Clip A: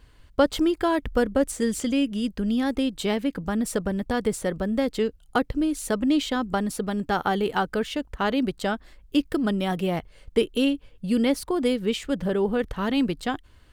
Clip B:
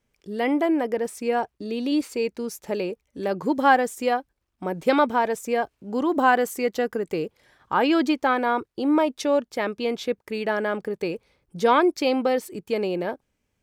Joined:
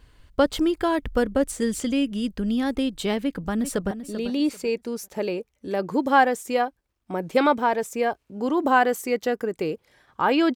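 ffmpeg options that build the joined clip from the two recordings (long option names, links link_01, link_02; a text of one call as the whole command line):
ffmpeg -i cue0.wav -i cue1.wav -filter_complex "[0:a]apad=whole_dur=10.55,atrim=end=10.55,atrim=end=3.912[link_01];[1:a]atrim=start=1.428:end=8.07[link_02];[link_01][link_02]acrossfade=duration=0.004:curve1=hsin:curve2=hsin,asplit=2[link_03][link_04];[link_04]afade=type=in:start_time=3.19:duration=0.01,afade=type=out:start_time=3.91:duration=0.01,aecho=0:1:390|780|1170:0.281838|0.0704596|0.0176149[link_05];[link_03][link_05]amix=inputs=2:normalize=0" out.wav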